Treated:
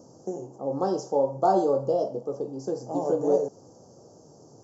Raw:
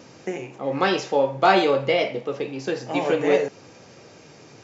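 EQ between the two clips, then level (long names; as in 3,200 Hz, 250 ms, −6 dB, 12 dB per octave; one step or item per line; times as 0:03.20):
Chebyshev band-stop filter 770–6,300 Hz, order 2
parametric band 3,800 Hz −14 dB 0.28 octaves
−3.0 dB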